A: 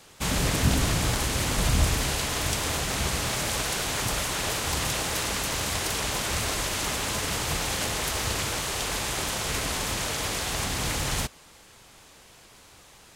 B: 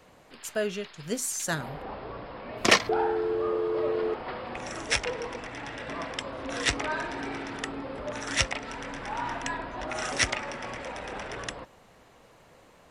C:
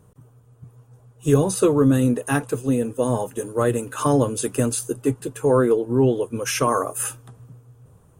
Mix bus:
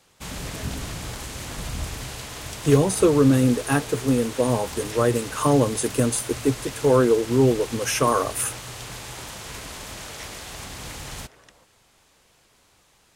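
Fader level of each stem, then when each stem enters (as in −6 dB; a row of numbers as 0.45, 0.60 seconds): −8.0, −17.5, 0.0 decibels; 0.00, 0.00, 1.40 seconds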